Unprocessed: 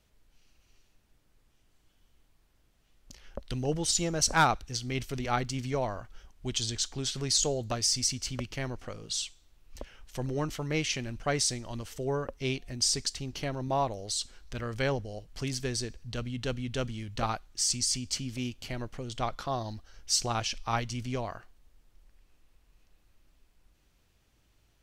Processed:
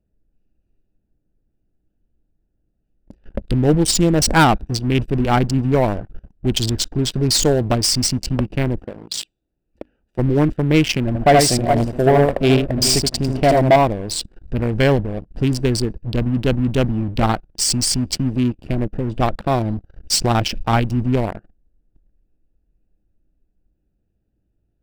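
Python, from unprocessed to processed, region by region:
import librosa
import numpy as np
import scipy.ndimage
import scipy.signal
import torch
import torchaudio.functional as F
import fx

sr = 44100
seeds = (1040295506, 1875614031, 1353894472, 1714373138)

y = fx.chain(x, sr, fx.highpass(hz=200.0, slope=6),
    fx.hum_notches(base_hz=50, count=6),
    fx.transformer_sat(knee_hz=940.0), at=(8.84, 10.19))
y = fx.chain(y, sr, fx.peak_eq(hz=680.0, db=13.5, octaves=0.49),
    fx.echo_multitap(ms=(77, 365, 419), db=(-3.5, -20.0, -12.0)), at=(11.07, 13.76))
y = fx.wiener(y, sr, points=41)
y = fx.leveller(y, sr, passes=3)
y = fx.graphic_eq_31(y, sr, hz=(200, 315, 1250, 4000, 6300), db=(5, 4, -3, -3, -9))
y = y * 10.0 ** (5.0 / 20.0)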